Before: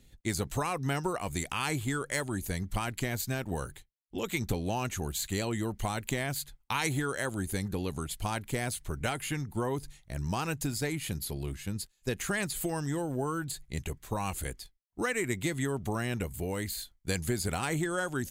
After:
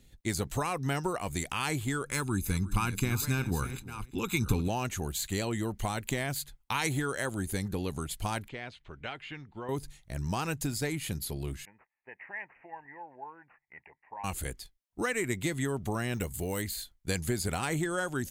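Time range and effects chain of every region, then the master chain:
2.06–4.68 s: chunks repeated in reverse 664 ms, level -11.5 dB + comb 0.8 ms, depth 79% + delay 353 ms -17.5 dB
8.48–9.69 s: four-pole ladder low-pass 4 kHz, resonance 30% + bass shelf 240 Hz -7.5 dB
11.65–14.24 s: two resonant band-passes 1.3 kHz, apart 1.1 oct + careless resampling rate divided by 8×, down none, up filtered
16.14–16.62 s: treble shelf 4.4 kHz +9 dB + band-stop 2.4 kHz, Q 17 + careless resampling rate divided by 2×, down filtered, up hold
whole clip: none

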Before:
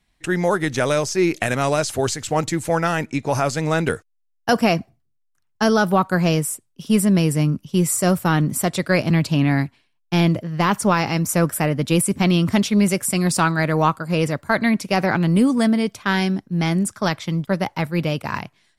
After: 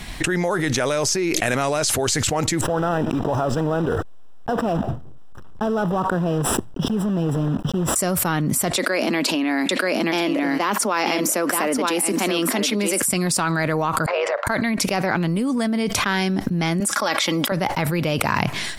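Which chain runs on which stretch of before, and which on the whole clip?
2.61–7.96 s: block-companded coder 3-bit + boxcar filter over 20 samples
8.76–13.02 s: steep high-pass 220 Hz 48 dB/octave + delay 930 ms -8.5 dB
14.06–14.47 s: elliptic high-pass 560 Hz, stop band 60 dB + AM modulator 100 Hz, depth 40% + tape spacing loss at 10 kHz 40 dB
16.80–17.52 s: high-pass 380 Hz + comb 3.6 ms, depth 47%
whole clip: dynamic bell 130 Hz, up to -5 dB, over -30 dBFS, Q 0.82; level flattener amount 100%; trim -6 dB

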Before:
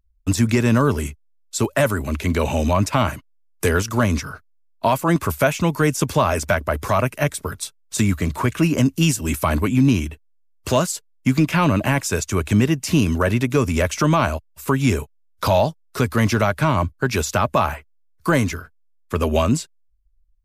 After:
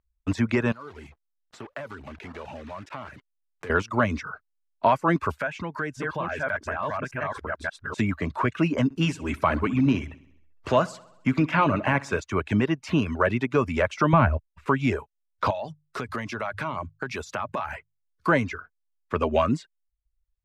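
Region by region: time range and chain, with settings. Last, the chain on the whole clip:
0.72–3.70 s: block-companded coder 3-bit + compression 4:1, threshold -33 dBFS
5.37–7.98 s: chunks repeated in reverse 581 ms, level 0 dB + peaking EQ 1.6 kHz +10 dB 0.23 oct + compression 2.5:1, threshold -27 dBFS
8.84–12.20 s: upward compressor, threshold -34 dBFS + feedback delay 65 ms, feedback 58%, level -10.5 dB
14.13–14.66 s: expander -47 dBFS + upward compressor, threshold -37 dBFS + tone controls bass +13 dB, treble -14 dB
15.50–18.27 s: treble shelf 4.3 kHz +11 dB + hum notches 50/100/150 Hz + compression 10:1, threshold -22 dBFS
whole clip: reverb removal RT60 0.53 s; low-pass 1.7 kHz 12 dB/octave; tilt EQ +2.5 dB/octave

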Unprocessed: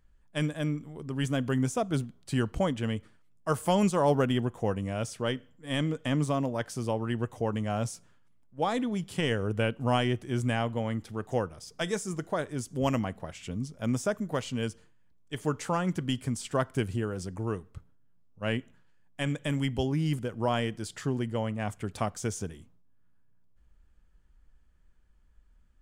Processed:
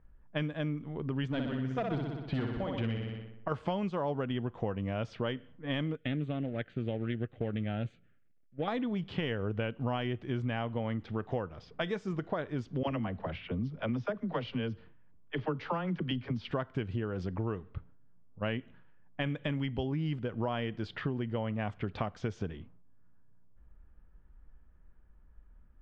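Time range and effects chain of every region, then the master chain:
1.28–3.52 s: square tremolo 2 Hz, depth 65%, duty 40% + hard clipper -25 dBFS + flutter echo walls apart 10.5 m, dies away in 0.85 s
5.95–8.68 s: companding laws mixed up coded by A + static phaser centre 2.3 kHz, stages 4 + loudspeaker Doppler distortion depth 0.14 ms
12.83–16.51 s: steep low-pass 5.6 kHz + phase dispersion lows, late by 43 ms, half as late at 350 Hz
whole clip: low-pass 3.7 kHz 24 dB/octave; level-controlled noise filter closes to 1.4 kHz, open at -28 dBFS; compression 6:1, threshold -35 dBFS; trim +4.5 dB

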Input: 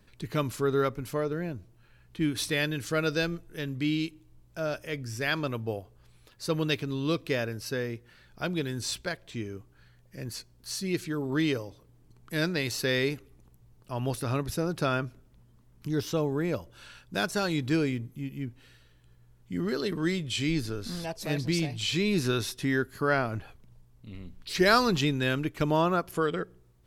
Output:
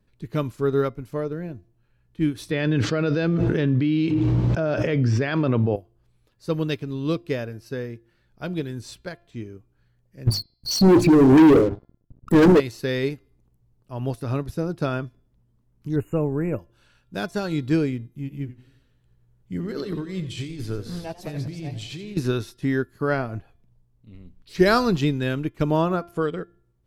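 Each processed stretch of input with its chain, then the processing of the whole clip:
2.51–5.76 s: high-pass 110 Hz + distance through air 190 m + level flattener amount 100%
10.27–12.60 s: resonances exaggerated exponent 3 + hum notches 50/100/150/200/250/300/350/400 Hz + waveshaping leveller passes 5
15.96–16.59 s: brick-wall FIR band-stop 2.9–6.6 kHz + bass shelf 61 Hz +10 dB
18.16–22.17 s: band-stop 250 Hz, Q 7 + compressor with a negative ratio -32 dBFS + modulated delay 89 ms, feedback 51%, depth 132 cents, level -11.5 dB
whole clip: tilt shelf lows +4 dB, about 820 Hz; de-hum 344.6 Hz, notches 15; upward expansion 1.5:1, over -44 dBFS; trim +5.5 dB

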